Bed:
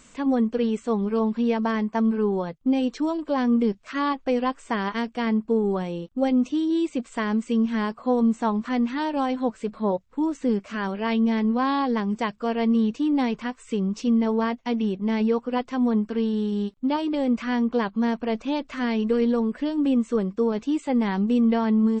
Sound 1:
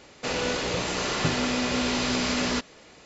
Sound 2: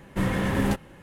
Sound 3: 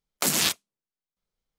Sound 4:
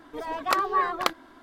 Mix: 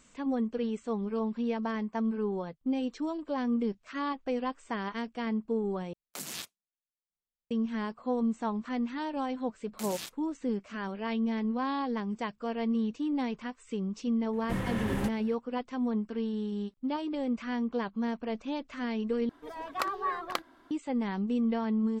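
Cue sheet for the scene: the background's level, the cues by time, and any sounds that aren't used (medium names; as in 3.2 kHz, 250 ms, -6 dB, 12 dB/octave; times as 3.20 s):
bed -8.5 dB
5.93 s: replace with 3 -16.5 dB
9.57 s: add 3 -18 dB
14.33 s: add 2 -7.5 dB + short-mantissa float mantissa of 6-bit
19.29 s: replace with 4 -8 dB
not used: 1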